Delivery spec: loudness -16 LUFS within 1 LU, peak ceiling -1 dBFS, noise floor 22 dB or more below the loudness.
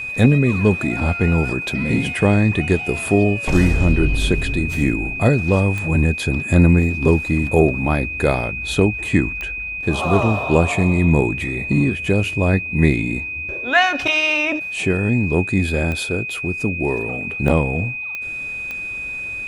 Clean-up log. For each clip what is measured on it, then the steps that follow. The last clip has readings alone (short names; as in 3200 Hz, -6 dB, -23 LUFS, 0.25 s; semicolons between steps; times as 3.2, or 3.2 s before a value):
clicks 6; steady tone 2500 Hz; tone level -25 dBFS; loudness -18.5 LUFS; peak -1.0 dBFS; loudness target -16.0 LUFS
-> de-click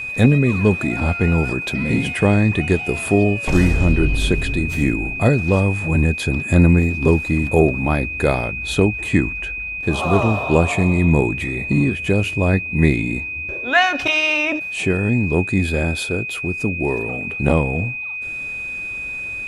clicks 0; steady tone 2500 Hz; tone level -25 dBFS
-> notch 2500 Hz, Q 30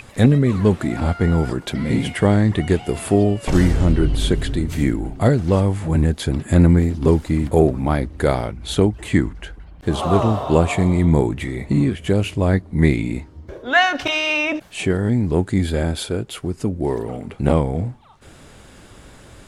steady tone none; loudness -19.0 LUFS; peak -1.5 dBFS; loudness target -16.0 LUFS
-> gain +3 dB; limiter -1 dBFS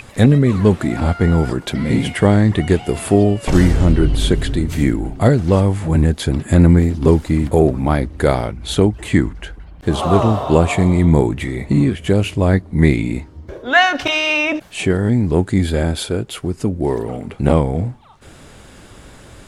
loudness -16.0 LUFS; peak -1.0 dBFS; noise floor -42 dBFS